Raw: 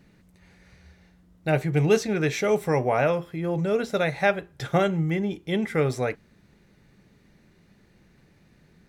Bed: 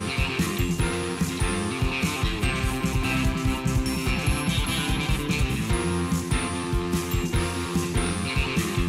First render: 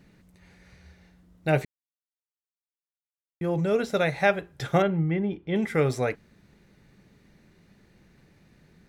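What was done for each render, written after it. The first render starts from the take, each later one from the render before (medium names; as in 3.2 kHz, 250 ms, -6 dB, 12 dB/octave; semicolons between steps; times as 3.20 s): 1.65–3.41 s: mute; 4.82–5.56 s: distance through air 330 m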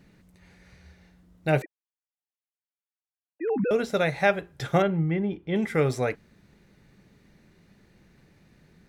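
1.62–3.71 s: formants replaced by sine waves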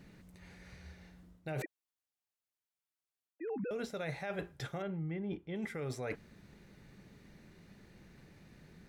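peak limiter -19.5 dBFS, peak gain reduction 10.5 dB; reverse; compression 12:1, threshold -36 dBFS, peak gain reduction 13.5 dB; reverse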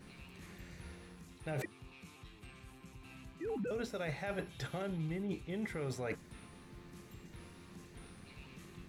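add bed -29.5 dB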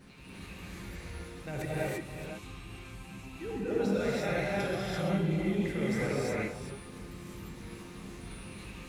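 chunks repeated in reverse 292 ms, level -9.5 dB; gated-style reverb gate 370 ms rising, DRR -7.5 dB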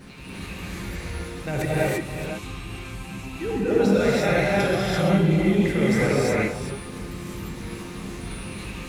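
trim +10.5 dB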